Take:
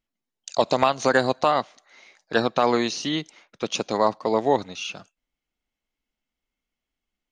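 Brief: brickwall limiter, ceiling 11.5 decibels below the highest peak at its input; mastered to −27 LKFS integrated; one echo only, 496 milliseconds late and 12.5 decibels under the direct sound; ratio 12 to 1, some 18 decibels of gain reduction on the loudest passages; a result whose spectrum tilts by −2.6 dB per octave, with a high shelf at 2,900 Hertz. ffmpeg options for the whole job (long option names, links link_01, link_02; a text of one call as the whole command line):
ffmpeg -i in.wav -af "highshelf=frequency=2900:gain=4,acompressor=threshold=-32dB:ratio=12,alimiter=level_in=3.5dB:limit=-24dB:level=0:latency=1,volume=-3.5dB,aecho=1:1:496:0.237,volume=14dB" out.wav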